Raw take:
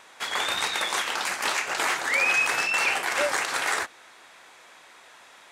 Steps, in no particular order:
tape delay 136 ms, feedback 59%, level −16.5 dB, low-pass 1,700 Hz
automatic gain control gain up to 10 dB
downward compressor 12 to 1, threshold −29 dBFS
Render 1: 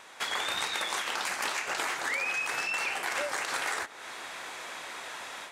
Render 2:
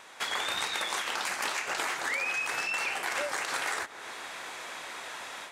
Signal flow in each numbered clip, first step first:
automatic gain control, then downward compressor, then tape delay
automatic gain control, then tape delay, then downward compressor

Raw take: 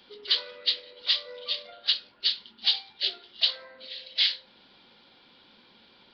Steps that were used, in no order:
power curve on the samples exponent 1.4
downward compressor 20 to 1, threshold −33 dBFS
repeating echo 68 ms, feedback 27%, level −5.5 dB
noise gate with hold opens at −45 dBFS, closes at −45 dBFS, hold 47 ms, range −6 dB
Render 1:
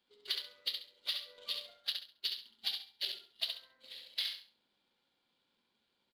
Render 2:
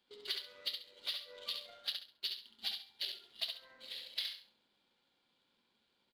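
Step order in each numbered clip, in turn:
power curve on the samples, then downward compressor, then noise gate with hold, then repeating echo
noise gate with hold, then downward compressor, then power curve on the samples, then repeating echo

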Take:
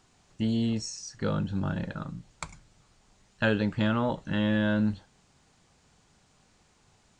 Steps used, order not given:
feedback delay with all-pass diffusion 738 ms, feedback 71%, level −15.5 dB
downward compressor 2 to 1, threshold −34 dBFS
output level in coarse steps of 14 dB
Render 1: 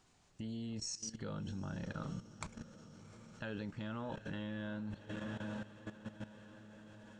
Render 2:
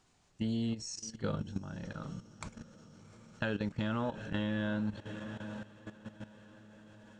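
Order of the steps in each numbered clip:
feedback delay with all-pass diffusion, then downward compressor, then output level in coarse steps
feedback delay with all-pass diffusion, then output level in coarse steps, then downward compressor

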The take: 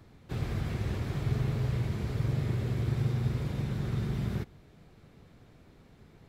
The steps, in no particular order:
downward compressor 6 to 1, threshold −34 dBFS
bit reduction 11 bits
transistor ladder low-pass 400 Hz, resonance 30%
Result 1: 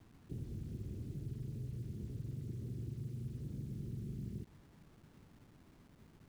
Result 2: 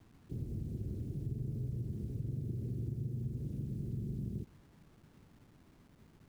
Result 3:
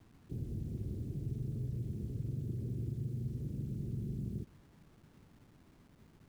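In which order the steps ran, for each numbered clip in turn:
downward compressor, then transistor ladder low-pass, then bit reduction
transistor ladder low-pass, then bit reduction, then downward compressor
transistor ladder low-pass, then downward compressor, then bit reduction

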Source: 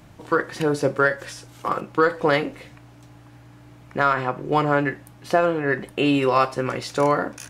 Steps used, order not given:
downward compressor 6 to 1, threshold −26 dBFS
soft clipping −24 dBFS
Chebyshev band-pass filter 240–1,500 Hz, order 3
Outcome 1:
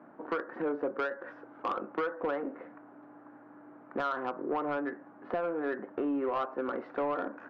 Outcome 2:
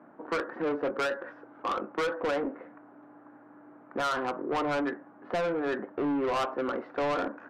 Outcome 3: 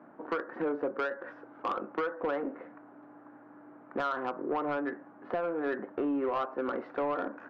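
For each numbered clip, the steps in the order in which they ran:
downward compressor, then Chebyshev band-pass filter, then soft clipping
Chebyshev band-pass filter, then soft clipping, then downward compressor
Chebyshev band-pass filter, then downward compressor, then soft clipping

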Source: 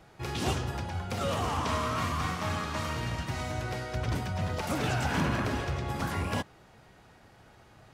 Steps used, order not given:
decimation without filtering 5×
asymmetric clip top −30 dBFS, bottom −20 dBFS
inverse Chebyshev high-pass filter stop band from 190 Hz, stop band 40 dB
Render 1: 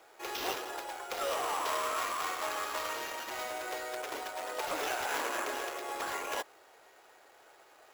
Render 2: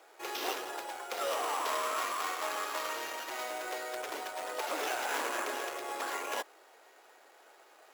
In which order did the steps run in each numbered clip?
asymmetric clip, then inverse Chebyshev high-pass filter, then decimation without filtering
decimation without filtering, then asymmetric clip, then inverse Chebyshev high-pass filter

